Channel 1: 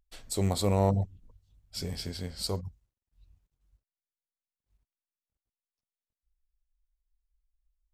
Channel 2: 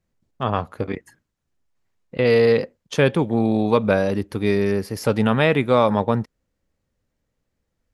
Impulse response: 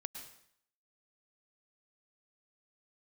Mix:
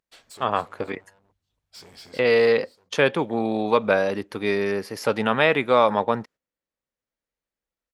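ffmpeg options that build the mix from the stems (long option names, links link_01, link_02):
-filter_complex "[0:a]acompressor=threshold=-35dB:ratio=2.5,asoftclip=type=hard:threshold=-39dB,volume=3dB,asplit=2[link_01][link_02];[link_02]volume=-16.5dB[link_03];[1:a]agate=range=-12dB:threshold=-41dB:ratio=16:detection=peak,volume=3dB,asplit=2[link_04][link_05];[link_05]apad=whole_len=349743[link_06];[link_01][link_06]sidechaincompress=threshold=-21dB:ratio=8:attack=31:release=1140[link_07];[link_03]aecho=0:1:282:1[link_08];[link_07][link_04][link_08]amix=inputs=3:normalize=0,highpass=frequency=680:poles=1,highshelf=frequency=6200:gain=-9.5"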